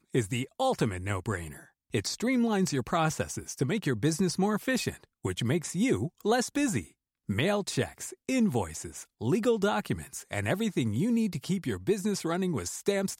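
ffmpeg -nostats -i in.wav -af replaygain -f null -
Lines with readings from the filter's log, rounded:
track_gain = +10.1 dB
track_peak = 0.144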